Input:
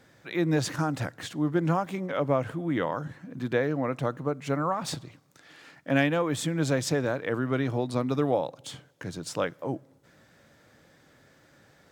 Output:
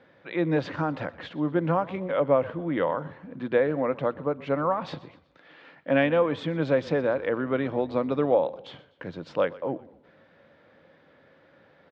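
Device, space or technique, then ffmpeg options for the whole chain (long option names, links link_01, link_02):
frequency-shifting delay pedal into a guitar cabinet: -filter_complex "[0:a]asplit=4[link_01][link_02][link_03][link_04];[link_02]adelay=124,afreqshift=-33,volume=-20dB[link_05];[link_03]adelay=248,afreqshift=-66,volume=-26.9dB[link_06];[link_04]adelay=372,afreqshift=-99,volume=-33.9dB[link_07];[link_01][link_05][link_06][link_07]amix=inputs=4:normalize=0,highpass=87,equalizer=frequency=120:width_type=q:width=4:gain=-8,equalizer=frequency=530:width_type=q:width=4:gain=7,equalizer=frequency=980:width_type=q:width=4:gain=3,lowpass=frequency=3500:width=0.5412,lowpass=frequency=3500:width=1.3066"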